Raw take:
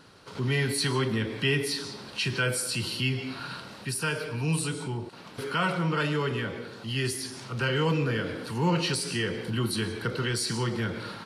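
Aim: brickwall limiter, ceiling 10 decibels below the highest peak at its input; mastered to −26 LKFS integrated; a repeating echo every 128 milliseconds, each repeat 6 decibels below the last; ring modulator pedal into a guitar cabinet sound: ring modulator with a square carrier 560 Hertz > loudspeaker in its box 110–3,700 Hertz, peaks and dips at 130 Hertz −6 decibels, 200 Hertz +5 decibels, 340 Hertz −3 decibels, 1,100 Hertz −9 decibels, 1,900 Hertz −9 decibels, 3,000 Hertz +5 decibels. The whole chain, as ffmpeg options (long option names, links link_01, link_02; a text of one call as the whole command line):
ffmpeg -i in.wav -af "alimiter=level_in=0.5dB:limit=-24dB:level=0:latency=1,volume=-0.5dB,aecho=1:1:128|256|384|512|640|768:0.501|0.251|0.125|0.0626|0.0313|0.0157,aeval=exprs='val(0)*sgn(sin(2*PI*560*n/s))':channel_layout=same,highpass=110,equalizer=frequency=130:width_type=q:width=4:gain=-6,equalizer=frequency=200:width_type=q:width=4:gain=5,equalizer=frequency=340:width_type=q:width=4:gain=-3,equalizer=frequency=1100:width_type=q:width=4:gain=-9,equalizer=frequency=1900:width_type=q:width=4:gain=-9,equalizer=frequency=3000:width_type=q:width=4:gain=5,lowpass=frequency=3700:width=0.5412,lowpass=frequency=3700:width=1.3066,volume=8dB" out.wav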